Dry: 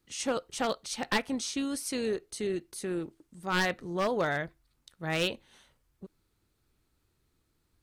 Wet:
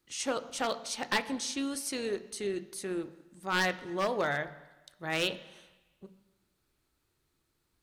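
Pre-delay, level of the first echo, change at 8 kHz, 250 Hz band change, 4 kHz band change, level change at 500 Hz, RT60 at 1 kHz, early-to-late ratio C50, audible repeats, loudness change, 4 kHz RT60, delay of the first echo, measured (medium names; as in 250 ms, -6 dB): 3 ms, no echo, 0.0 dB, -3.0 dB, 0.0 dB, -2.0 dB, 1.2 s, 15.5 dB, no echo, -1.0 dB, 1.2 s, no echo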